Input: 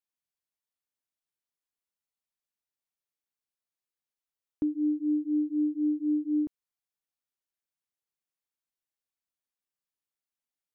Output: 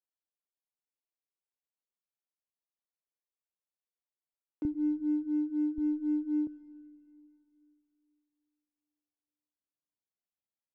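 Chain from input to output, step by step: local Wiener filter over 25 samples; high-pass 340 Hz 12 dB/octave, from 4.65 s 94 Hz, from 5.78 s 46 Hz; algorithmic reverb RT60 3 s, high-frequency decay 0.9×, pre-delay 45 ms, DRR 16 dB; trim -2.5 dB

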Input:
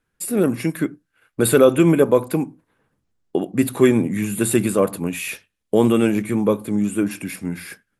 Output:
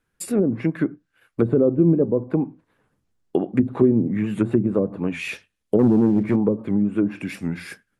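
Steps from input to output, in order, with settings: low-pass that closes with the level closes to 360 Hz, closed at -13.5 dBFS; 5.79–6.36 s: waveshaping leveller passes 1; warped record 78 rpm, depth 100 cents

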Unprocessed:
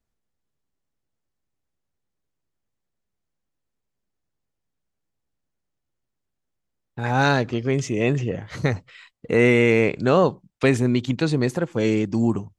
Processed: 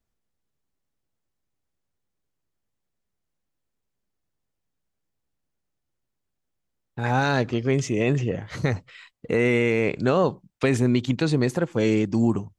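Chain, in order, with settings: peak limiter -10.5 dBFS, peak gain reduction 5.5 dB

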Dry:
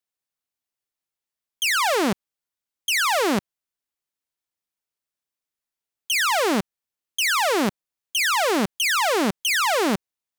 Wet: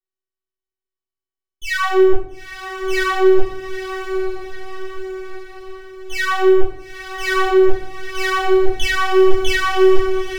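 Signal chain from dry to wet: tracing distortion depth 0.02 ms; high-pass 56 Hz 6 dB/octave; tilt EQ -3.5 dB/octave; transient shaper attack -11 dB, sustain +12 dB; waveshaping leveller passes 2; robot voice 378 Hz; echo that smears into a reverb 903 ms, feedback 53%, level -9 dB; simulated room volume 100 m³, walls mixed, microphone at 1.4 m; trim -3.5 dB

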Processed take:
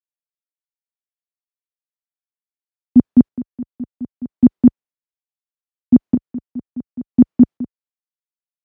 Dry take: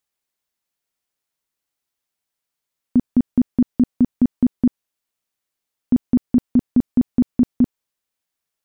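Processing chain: low-pass 1 kHz 6 dB/octave; square tremolo 0.7 Hz, depth 65%, duty 30%; high-pass 41 Hz 12 dB/octave; bass shelf 63 Hz -12 dB; three bands expanded up and down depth 100%; trim +4 dB

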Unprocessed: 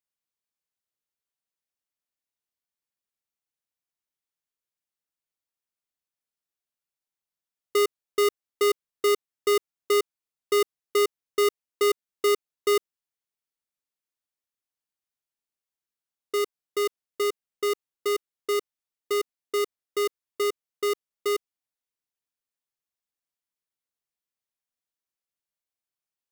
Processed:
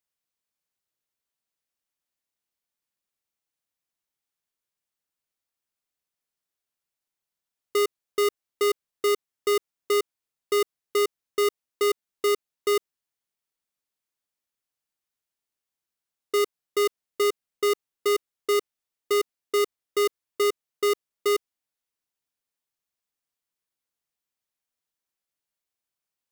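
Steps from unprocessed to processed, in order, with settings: peak limiter -23.5 dBFS, peak gain reduction 4 dB; trim +3 dB

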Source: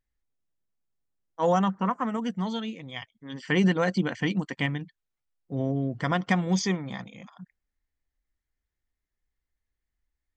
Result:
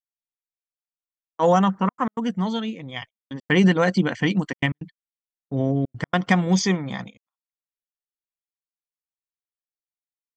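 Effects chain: trance gate "xxxxxx.x.xxxxx" 159 bpm -60 dB; gate -43 dBFS, range -44 dB; 2.17–4.30 s: tape noise reduction on one side only decoder only; trim +5.5 dB

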